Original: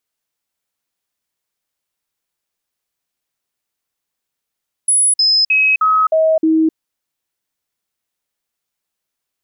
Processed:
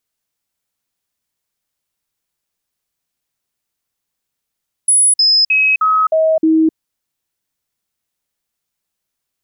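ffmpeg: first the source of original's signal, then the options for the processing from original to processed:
-f lavfi -i "aevalsrc='0.335*clip(min(mod(t,0.31),0.26-mod(t,0.31))/0.005,0,1)*sin(2*PI*10200*pow(2,-floor(t/0.31)/1)*mod(t,0.31))':d=1.86:s=44100"
-af "bass=f=250:g=5,treble=f=4000:g=2"

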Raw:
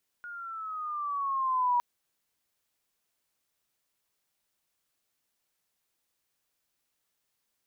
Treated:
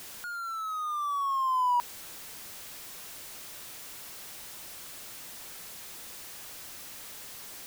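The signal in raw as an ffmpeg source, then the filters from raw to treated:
-f lavfi -i "aevalsrc='pow(10,(-22+17*(t/1.56-1))/20)*sin(2*PI*1440*1.56/(-7*log(2)/12)*(exp(-7*log(2)/12*t/1.56)-1))':d=1.56:s=44100"
-af "aeval=exprs='val(0)+0.5*0.0126*sgn(val(0))':c=same"

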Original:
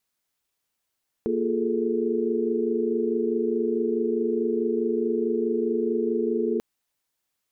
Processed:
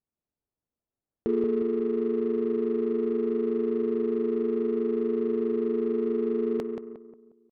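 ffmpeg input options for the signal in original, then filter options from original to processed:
-f lavfi -i "aevalsrc='0.0422*(sin(2*PI*233.08*t)+sin(2*PI*349.23*t)+sin(2*PI*415.3*t)+sin(2*PI*440*t))':d=5.34:s=44100"
-af "aecho=1:1:179|358|537|716|895:0.501|0.216|0.0927|0.0398|0.0171,adynamicsmooth=sensitivity=4.5:basefreq=600"

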